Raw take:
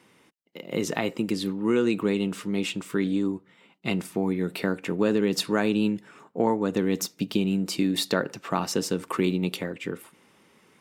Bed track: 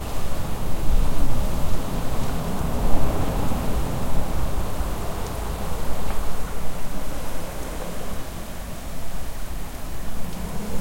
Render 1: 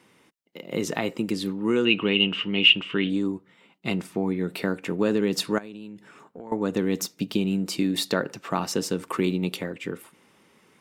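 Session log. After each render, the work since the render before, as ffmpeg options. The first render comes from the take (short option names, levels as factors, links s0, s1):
-filter_complex "[0:a]asettb=1/sr,asplit=3[s0][s1][s2];[s0]atrim=end=1.854[s3];[s1]atrim=start=1.85:end=3.1,asetpts=PTS-STARTPTS,afade=t=in:d=0.004:c=qsin,afade=t=out:st=1.246:d=0.004:c=qsin,lowpass=f=2900:t=q:w=14[s4];[s2]atrim=start=3.096[s5];[s3][s4]acrossfade=d=0.004:c1=hsin:c2=qsin[s6];[s6][s5]acrossfade=d=0.004:c1=qsin:c2=hsin,asettb=1/sr,asplit=3[s7][s8][s9];[s7]atrim=end=3.954[s10];[s8]atrim=start=3.95:end=4.51,asetpts=PTS-STARTPTS,afade=t=in:d=0.004:c=qsin,afade=t=out:st=0.556:d=0.004:c=qsin,highshelf=f=7600:g=-8[s11];[s9]atrim=start=4.506[s12];[s10][s11]acrossfade=d=0.004:c1=hsin:c2=qsin[s13];[s13][s12]acrossfade=d=0.004:c1=qsin:c2=hsin,asettb=1/sr,asplit=3[s14][s15][s16];[s14]atrim=end=5.584[s17];[s15]atrim=start=5.58:end=6.52,asetpts=PTS-STARTPTS,afade=t=in:d=0.004:c=qsin,afade=t=out:st=0.936:d=0.004:c=qsin,acompressor=threshold=0.0141:ratio=6:attack=3.2:release=140:knee=1:detection=peak[s18];[s16]atrim=start=6.516[s19];[s17][s18]acrossfade=d=0.004:c1=hsin:c2=qsin[s20];[s20][s19]acrossfade=d=0.004:c1=qsin:c2=hsin"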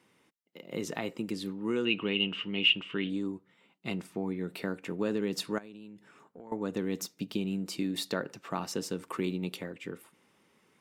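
-af "volume=0.398"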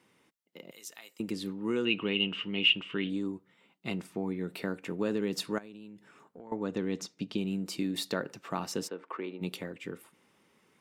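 -filter_complex "[0:a]asettb=1/sr,asplit=3[s0][s1][s2];[s0]atrim=end=0.714[s3];[s1]atrim=start=0.71:end=1.2,asetpts=PTS-STARTPTS,afade=t=in:d=0.004:c=qsin,afade=t=out:st=0.486:d=0.004:c=qsin,aderivative[s4];[s2]atrim=start=1.196[s5];[s3][s4]acrossfade=d=0.004:c1=hsin:c2=qsin[s6];[s6][s5]acrossfade=d=0.004:c1=qsin:c2=hsin,asettb=1/sr,asplit=3[s7][s8][s9];[s7]atrim=end=6.394[s10];[s8]atrim=start=6.39:end=7.38,asetpts=PTS-STARTPTS,afade=t=in:d=0.004:c=qsin,afade=t=out:st=0.986:d=0.004:c=qsin,lowpass=6300[s11];[s9]atrim=start=7.376[s12];[s10][s11]acrossfade=d=0.004:c1=hsin:c2=qsin[s13];[s13][s12]acrossfade=d=0.004:c1=qsin:c2=hsin,asplit=3[s14][s15][s16];[s14]afade=t=out:st=8.87:d=0.02[s17];[s15]highpass=420,lowpass=2100,afade=t=in:st=8.87:d=0.02,afade=t=out:st=9.4:d=0.02[s18];[s16]afade=t=in:st=9.4:d=0.02[s19];[s17][s18][s19]amix=inputs=3:normalize=0"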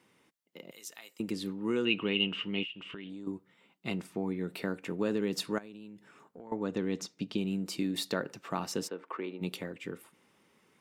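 -filter_complex "[0:a]asettb=1/sr,asplit=3[s0][s1][s2];[s0]atrim=end=2.634[s3];[s1]atrim=start=2.63:end=3.27,asetpts=PTS-STARTPTS,afade=t=in:d=0.004:c=qsin,afade=t=out:st=0.636:d=0.004:c=qsin,acompressor=threshold=0.01:ratio=6:attack=3.2:release=140:knee=1:detection=peak[s4];[s2]atrim=start=3.266[s5];[s3][s4]acrossfade=d=0.004:c1=hsin:c2=qsin[s6];[s6][s5]acrossfade=d=0.004:c1=qsin:c2=hsin"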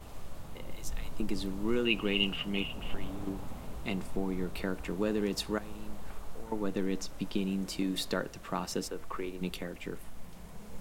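-filter_complex "[1:a]volume=0.119[s0];[0:a][s0]amix=inputs=2:normalize=0"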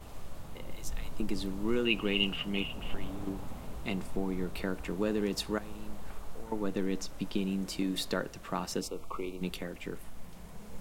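-filter_complex "[0:a]asettb=1/sr,asplit=3[s0][s1][s2];[s0]atrim=end=8.814[s3];[s1]atrim=start=8.81:end=9.41,asetpts=PTS-STARTPTS,afade=t=in:d=0.004:c=qsin,afade=t=out:st=0.596:d=0.004:c=qsin,asuperstop=centerf=1700:order=8:qfactor=2.2[s4];[s2]atrim=start=9.406[s5];[s3][s4]acrossfade=d=0.004:c1=hsin:c2=qsin[s6];[s6][s5]acrossfade=d=0.004:c1=qsin:c2=hsin"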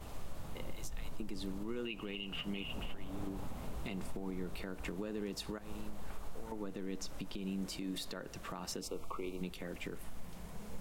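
-af "acompressor=threshold=0.0224:ratio=6,alimiter=level_in=2.11:limit=0.0631:level=0:latency=1:release=127,volume=0.473"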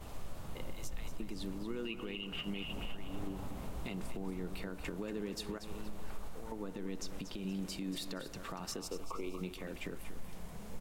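-af "aecho=1:1:236|472|708|944:0.299|0.102|0.0345|0.0117"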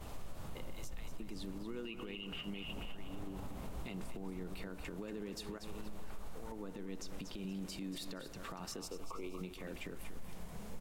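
-af "alimiter=level_in=3.35:limit=0.0631:level=0:latency=1:release=93,volume=0.299"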